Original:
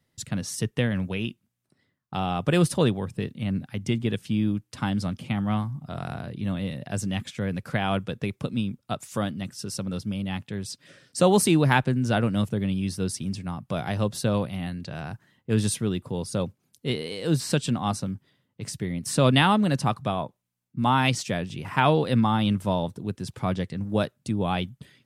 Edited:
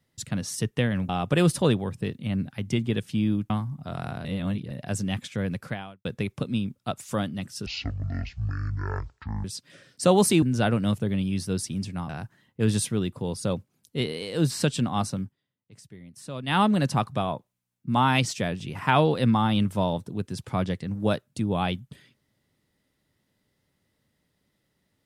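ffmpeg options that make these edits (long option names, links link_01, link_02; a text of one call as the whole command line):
ffmpeg -i in.wav -filter_complex "[0:a]asplit=12[link_01][link_02][link_03][link_04][link_05][link_06][link_07][link_08][link_09][link_10][link_11][link_12];[link_01]atrim=end=1.092[link_13];[link_02]atrim=start=2.248:end=4.662[link_14];[link_03]atrim=start=5.528:end=6.282[link_15];[link_04]atrim=start=6.278:end=6.742,asetpts=PTS-STARTPTS,areverse[link_16];[link_05]atrim=start=6.738:end=8.08,asetpts=PTS-STARTPTS,afade=type=out:start_time=0.892:duration=0.45:curve=qua[link_17];[link_06]atrim=start=8.08:end=9.694,asetpts=PTS-STARTPTS,afade=type=in:duration=0.004:curve=hsin[link_18];[link_07]atrim=start=9.69:end=10.6,asetpts=PTS-STARTPTS,asetrate=22491,aresample=44100,atrim=end_sample=78688,asetpts=PTS-STARTPTS[link_19];[link_08]atrim=start=10.596:end=11.582[link_20];[link_09]atrim=start=11.928:end=13.602[link_21];[link_10]atrim=start=14.988:end=18.25,asetpts=PTS-STARTPTS,afade=type=out:start_time=3.132:duration=0.13:silence=0.158489[link_22];[link_11]atrim=start=18.25:end=19.36,asetpts=PTS-STARTPTS,volume=-16dB[link_23];[link_12]atrim=start=19.36,asetpts=PTS-STARTPTS,afade=type=in:duration=0.13:silence=0.158489[link_24];[link_13][link_14]acrossfade=duration=0.004:curve1=hsin:curve2=hsin[link_25];[link_25][link_15]acrossfade=duration=0.004:curve1=hsin:curve2=hsin[link_26];[link_26][link_16]acrossfade=duration=0.004:curve1=hsin:curve2=hsin[link_27];[link_17][link_18]concat=n=2:v=0:a=1[link_28];[link_27][link_28]acrossfade=duration=0.004:curve1=hsin:curve2=hsin[link_29];[link_29][link_19]acrossfade=duration=0.004:curve1=hsin:curve2=hsin[link_30];[link_30][link_20]acrossfade=duration=0.004:curve1=hsin:curve2=hsin[link_31];[link_31][link_21]acrossfade=duration=0.004:curve1=hsin:curve2=hsin[link_32];[link_22][link_23][link_24]concat=n=3:v=0:a=1[link_33];[link_32][link_33]acrossfade=duration=0.004:curve1=hsin:curve2=hsin" out.wav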